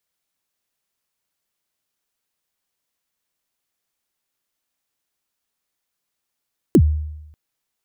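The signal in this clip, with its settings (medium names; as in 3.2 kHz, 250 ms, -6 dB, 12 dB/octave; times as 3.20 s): kick drum length 0.59 s, from 410 Hz, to 76 Hz, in 64 ms, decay 0.92 s, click on, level -6 dB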